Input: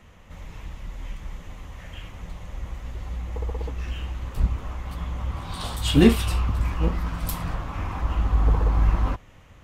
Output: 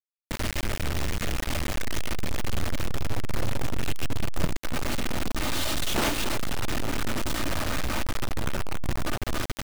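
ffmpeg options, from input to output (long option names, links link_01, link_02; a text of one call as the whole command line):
ffmpeg -i in.wav -filter_complex "[0:a]asuperstop=centerf=980:order=8:qfactor=2.6,aeval=exprs='abs(val(0))':channel_layout=same,lowpass=6000,aecho=1:1:3.3:0.91,aeval=exprs='(mod(2.24*val(0)+1,2)-1)/2.24':channel_layout=same,aecho=1:1:280|560|840:0.224|0.0627|0.0176,acompressor=threshold=-28dB:ratio=8,flanger=delay=8.9:depth=6.1:regen=-79:speed=0.28:shape=sinusoidal,asettb=1/sr,asplit=3[link_01][link_02][link_03];[link_01]atrim=end=1.784[link_04];[link_02]atrim=start=1.78:end=4.56,asetpts=PTS-STARTPTS,afade=type=in:duration=0.004:curve=qsin,afade=type=out:start_time=2.776:duration=0.004:curve=qsin,lowshelf=frequency=220:gain=5.5[link_05];[link_03]atrim=start=4.556[link_06];[link_04][link_05]acrossfade=duration=0.004:curve1=hsin:curve2=qsin[link_07];[link_07][link_06]acrossfade=duration=0.004:curve1=qsin:curve2=hsin,acrusher=bits=5:mix=0:aa=0.000001,volume=7.5dB" out.wav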